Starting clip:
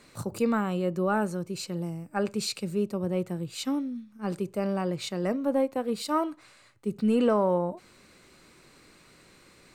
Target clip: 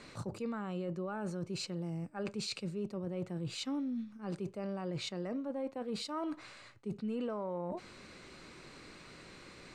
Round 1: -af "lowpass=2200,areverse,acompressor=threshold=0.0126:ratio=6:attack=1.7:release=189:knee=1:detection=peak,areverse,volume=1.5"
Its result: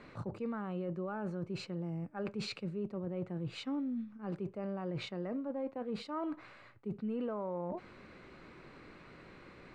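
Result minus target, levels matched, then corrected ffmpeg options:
8 kHz band -10.5 dB
-af "lowpass=6200,areverse,acompressor=threshold=0.0126:ratio=6:attack=1.7:release=189:knee=1:detection=peak,areverse,volume=1.5"

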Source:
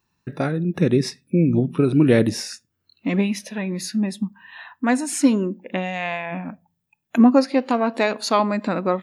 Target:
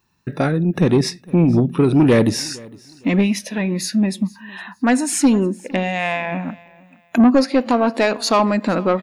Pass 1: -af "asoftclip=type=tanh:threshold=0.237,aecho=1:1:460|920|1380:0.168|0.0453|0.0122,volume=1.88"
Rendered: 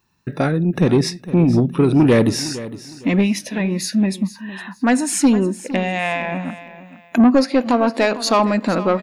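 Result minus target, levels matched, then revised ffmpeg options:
echo-to-direct +8 dB
-af "asoftclip=type=tanh:threshold=0.237,aecho=1:1:460|920:0.0668|0.018,volume=1.88"

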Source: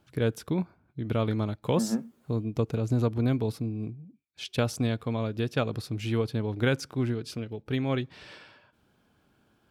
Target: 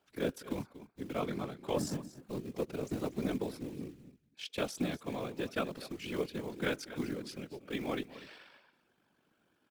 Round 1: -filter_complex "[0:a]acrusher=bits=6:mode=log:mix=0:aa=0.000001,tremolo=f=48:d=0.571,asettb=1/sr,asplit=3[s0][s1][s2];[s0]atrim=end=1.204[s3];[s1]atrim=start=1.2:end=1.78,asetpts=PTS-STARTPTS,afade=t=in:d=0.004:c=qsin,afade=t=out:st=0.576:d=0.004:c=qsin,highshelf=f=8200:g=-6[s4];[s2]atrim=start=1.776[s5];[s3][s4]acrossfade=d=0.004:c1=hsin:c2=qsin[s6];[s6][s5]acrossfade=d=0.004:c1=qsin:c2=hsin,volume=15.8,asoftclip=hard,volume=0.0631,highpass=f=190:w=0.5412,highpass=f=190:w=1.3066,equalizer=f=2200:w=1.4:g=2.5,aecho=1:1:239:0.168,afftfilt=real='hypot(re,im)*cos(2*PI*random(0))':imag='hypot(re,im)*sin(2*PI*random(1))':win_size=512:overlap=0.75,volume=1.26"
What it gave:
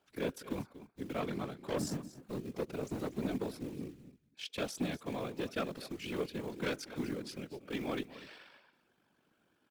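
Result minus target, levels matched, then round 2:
overload inside the chain: distortion +21 dB
-filter_complex "[0:a]acrusher=bits=6:mode=log:mix=0:aa=0.000001,tremolo=f=48:d=0.571,asettb=1/sr,asplit=3[s0][s1][s2];[s0]atrim=end=1.204[s3];[s1]atrim=start=1.2:end=1.78,asetpts=PTS-STARTPTS,afade=t=in:d=0.004:c=qsin,afade=t=out:st=0.576:d=0.004:c=qsin,highshelf=f=8200:g=-6[s4];[s2]atrim=start=1.776[s5];[s3][s4]acrossfade=d=0.004:c1=hsin:c2=qsin[s6];[s6][s5]acrossfade=d=0.004:c1=qsin:c2=hsin,volume=6.31,asoftclip=hard,volume=0.158,highpass=f=190:w=0.5412,highpass=f=190:w=1.3066,equalizer=f=2200:w=1.4:g=2.5,aecho=1:1:239:0.168,afftfilt=real='hypot(re,im)*cos(2*PI*random(0))':imag='hypot(re,im)*sin(2*PI*random(1))':win_size=512:overlap=0.75,volume=1.26"

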